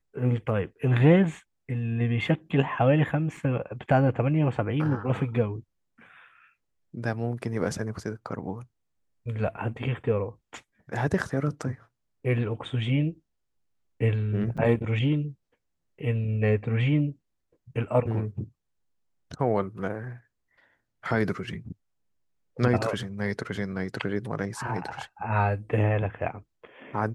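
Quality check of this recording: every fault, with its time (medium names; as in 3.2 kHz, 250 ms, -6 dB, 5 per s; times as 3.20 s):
3.37 s: dropout 3.1 ms
14.57–14.58 s: dropout 6.3 ms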